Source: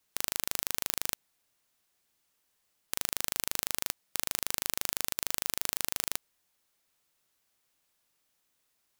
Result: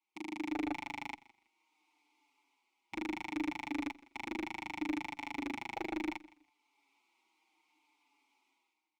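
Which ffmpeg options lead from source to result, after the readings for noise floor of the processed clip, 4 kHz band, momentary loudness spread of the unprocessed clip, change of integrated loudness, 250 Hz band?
-83 dBFS, -13.5 dB, 3 LU, -8.0 dB, +14.0 dB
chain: -filter_complex "[0:a]bandreject=f=60:t=h:w=6,bandreject=f=120:t=h:w=6,bandreject=f=180:t=h:w=6,afwtdn=0.0126,bass=f=250:g=-8,treble=f=4k:g=10,bandreject=f=1.8k:w=8.4,dynaudnorm=f=100:g=9:m=14.5dB,asplit=3[a][b][c];[a]bandpass=f=300:t=q:w=8,volume=0dB[d];[b]bandpass=f=870:t=q:w=8,volume=-6dB[e];[c]bandpass=f=2.24k:t=q:w=8,volume=-9dB[f];[d][e][f]amix=inputs=3:normalize=0,asplit=2[g][h];[h]highpass=f=720:p=1,volume=20dB,asoftclip=type=tanh:threshold=-34dB[i];[g][i]amix=inputs=2:normalize=0,lowpass=f=2.1k:p=1,volume=-6dB,aeval=exprs='clip(val(0),-1,0.00596)':c=same,asplit=2[j][k];[k]aecho=0:1:163|326:0.0944|0.0208[l];[j][l]amix=inputs=2:normalize=0,asplit=2[m][n];[n]adelay=5.8,afreqshift=-0.69[o];[m][o]amix=inputs=2:normalize=1,volume=16.5dB"

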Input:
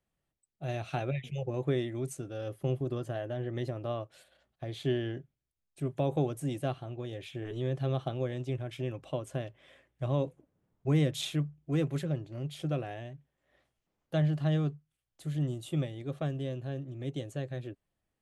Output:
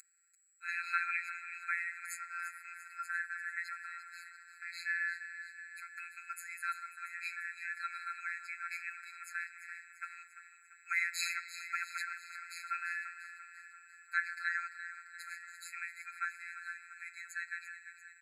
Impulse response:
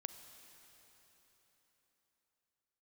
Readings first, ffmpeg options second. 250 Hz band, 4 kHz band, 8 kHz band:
under -40 dB, -5.5 dB, +2.0 dB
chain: -filter_complex "[0:a]equalizer=f=540:t=o:w=2.3:g=7.5,aeval=exprs='val(0)+0.0178*sin(2*PI*8000*n/s)':c=same,aecho=1:1:343|686|1029|1372|1715|2058:0.251|0.143|0.0816|0.0465|0.0265|0.0151,asplit=2[a][b];[1:a]atrim=start_sample=2205,lowpass=2.8k[c];[b][c]afir=irnorm=-1:irlink=0,volume=6dB[d];[a][d]amix=inputs=2:normalize=0,afftfilt=real='hypot(re,im)*cos(PI*b)':imag='0':win_size=1024:overlap=0.75,afftfilt=real='re*eq(mod(floor(b*sr/1024/1300),2),1)':imag='im*eq(mod(floor(b*sr/1024/1300),2),1)':win_size=1024:overlap=0.75,volume=9dB"

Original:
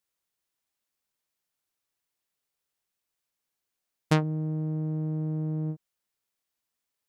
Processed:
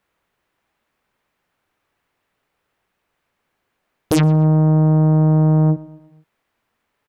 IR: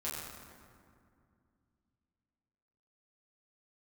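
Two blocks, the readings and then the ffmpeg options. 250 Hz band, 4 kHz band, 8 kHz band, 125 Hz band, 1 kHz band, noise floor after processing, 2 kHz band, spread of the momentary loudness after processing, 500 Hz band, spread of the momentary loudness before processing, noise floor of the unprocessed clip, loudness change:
+15.0 dB, +8.5 dB, +14.5 dB, +15.5 dB, +12.0 dB, -75 dBFS, +5.0 dB, 5 LU, +14.0 dB, 7 LU, -85 dBFS, +15.0 dB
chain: -filter_complex "[0:a]acrossover=split=2600[a][b];[a]aeval=exprs='0.251*sin(PI/2*5.62*val(0)/0.251)':c=same[c];[c][b]amix=inputs=2:normalize=0,asplit=2[d][e];[e]adelay=119,lowpass=f=2.8k:p=1,volume=-19dB,asplit=2[f][g];[g]adelay=119,lowpass=f=2.8k:p=1,volume=0.54,asplit=2[h][i];[i]adelay=119,lowpass=f=2.8k:p=1,volume=0.54,asplit=2[j][k];[k]adelay=119,lowpass=f=2.8k:p=1,volume=0.54[l];[d][f][h][j][l]amix=inputs=5:normalize=0,volume=1.5dB"

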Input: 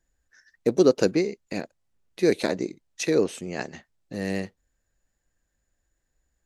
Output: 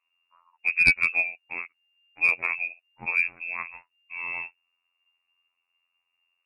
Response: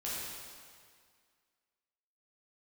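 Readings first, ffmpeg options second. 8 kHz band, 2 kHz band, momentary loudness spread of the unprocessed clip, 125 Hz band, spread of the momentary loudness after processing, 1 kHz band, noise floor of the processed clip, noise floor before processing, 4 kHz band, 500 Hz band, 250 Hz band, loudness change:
under -10 dB, +14.0 dB, 15 LU, under -10 dB, 17 LU, -1.0 dB, -80 dBFS, -78 dBFS, n/a, -26.0 dB, -23.5 dB, +1.0 dB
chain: -af "afftfilt=real='hypot(re,im)*cos(PI*b)':imag='0':win_size=2048:overlap=0.75,lowpass=f=2.4k:t=q:w=0.5098,lowpass=f=2.4k:t=q:w=0.6013,lowpass=f=2.4k:t=q:w=0.9,lowpass=f=2.4k:t=q:w=2.563,afreqshift=-2800,aeval=exprs='0.422*(cos(1*acos(clip(val(0)/0.422,-1,1)))-cos(1*PI/2))+0.188*(cos(2*acos(clip(val(0)/0.422,-1,1)))-cos(2*PI/2))+0.0531*(cos(4*acos(clip(val(0)/0.422,-1,1)))-cos(4*PI/2))+0.00299*(cos(5*acos(clip(val(0)/0.422,-1,1)))-cos(5*PI/2))':c=same,volume=1dB"

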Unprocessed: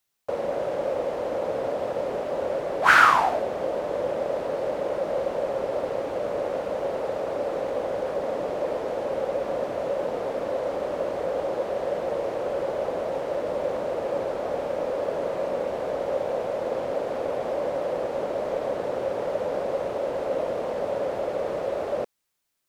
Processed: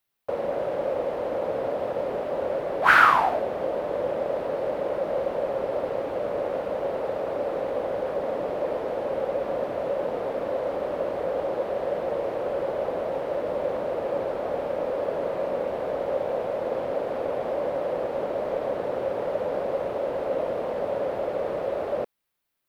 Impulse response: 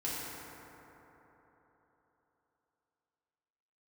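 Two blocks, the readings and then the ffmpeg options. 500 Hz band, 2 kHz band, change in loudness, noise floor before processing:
0.0 dB, -0.5 dB, 0.0 dB, -32 dBFS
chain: -af "equalizer=f=6.9k:w=1:g=-9"

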